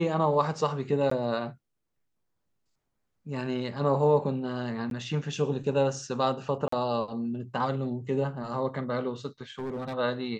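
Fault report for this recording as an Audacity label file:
1.100000	1.110000	gap 14 ms
4.900000	4.910000	gap 12 ms
6.680000	6.720000	gap 44 ms
9.590000	9.940000	clipped -30.5 dBFS

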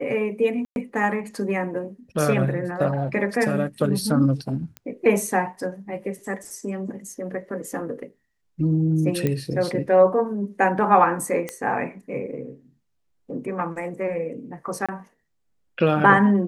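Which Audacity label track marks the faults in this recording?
0.650000	0.760000	gap 0.111 s
4.770000	4.770000	pop -19 dBFS
9.270000	9.270000	pop -11 dBFS
11.490000	11.490000	pop -14 dBFS
14.860000	14.890000	gap 26 ms

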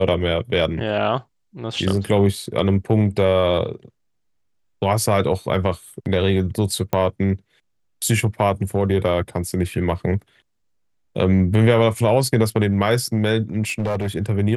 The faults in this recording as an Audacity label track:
6.930000	6.930000	pop -9 dBFS
13.670000	14.090000	clipped -18.5 dBFS

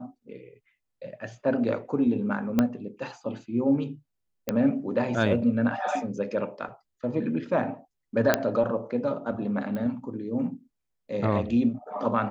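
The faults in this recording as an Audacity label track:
2.590000	2.590000	pop -10 dBFS
4.490000	4.490000	pop -12 dBFS
8.340000	8.340000	pop -5 dBFS
9.750000	9.750000	pop -22 dBFS

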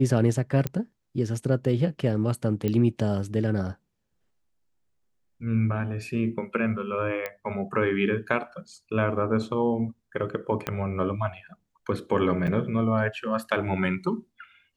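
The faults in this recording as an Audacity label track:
0.670000	0.670000	pop -13 dBFS
2.680000	2.680000	pop -15 dBFS
7.260000	7.260000	pop -17 dBFS
10.670000	10.670000	pop -12 dBFS
12.470000	12.480000	gap 7.5 ms

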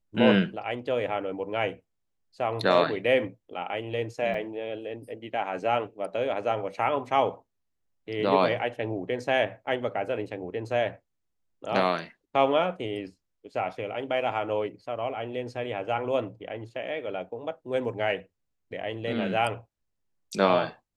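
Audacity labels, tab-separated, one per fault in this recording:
4.340000	4.340000	gap 3.3 ms

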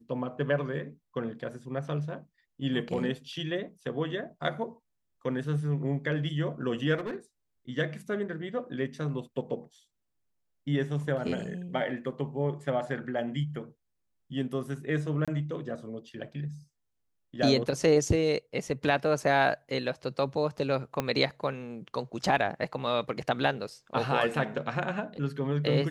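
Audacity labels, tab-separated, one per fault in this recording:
6.970000	7.160000	clipped -30.5 dBFS
15.250000	15.280000	gap 26 ms
21.000000	21.000000	pop -14 dBFS

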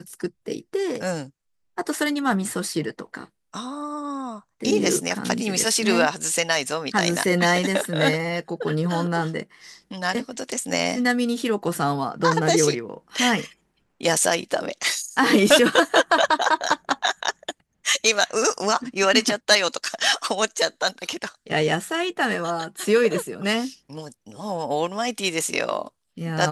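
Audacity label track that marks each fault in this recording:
5.240000	5.240000	gap 3.6 ms

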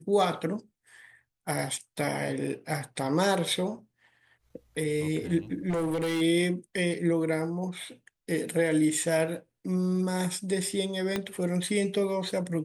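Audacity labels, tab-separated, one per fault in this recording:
5.690000	6.220000	clipped -25.5 dBFS
11.160000	11.160000	pop -14 dBFS

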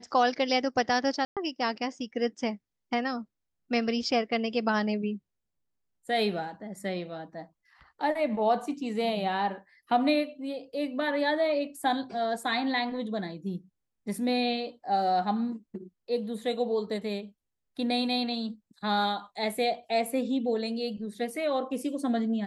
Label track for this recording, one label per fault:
1.250000	1.370000	gap 0.117 s

